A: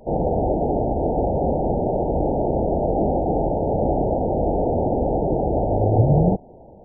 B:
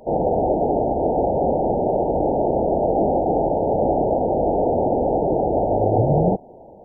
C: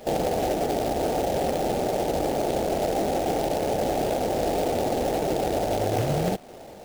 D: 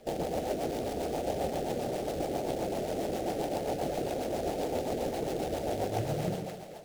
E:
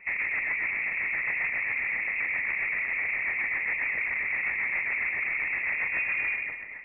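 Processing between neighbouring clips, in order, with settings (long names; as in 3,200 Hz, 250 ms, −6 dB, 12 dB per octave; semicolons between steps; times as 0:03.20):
low-shelf EQ 190 Hz −11.5 dB; level +4 dB
downward compressor 2.5 to 1, threshold −25 dBFS, peak gain reduction 8.5 dB; log-companded quantiser 4 bits
echo with a time of its own for lows and highs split 510 Hz, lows 101 ms, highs 218 ms, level −5 dB; rotating-speaker cabinet horn 7.5 Hz; level −7 dB
gain into a clipping stage and back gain 29 dB; voice inversion scrambler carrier 2,600 Hz; level +4.5 dB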